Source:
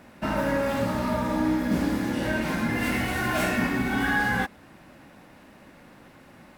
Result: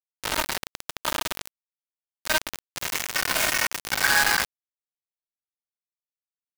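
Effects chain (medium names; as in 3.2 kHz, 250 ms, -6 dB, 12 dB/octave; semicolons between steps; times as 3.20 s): high-pass 800 Hz 24 dB/octave; comb 3.2 ms, depth 60%; bit crusher 4-bit; trim +4 dB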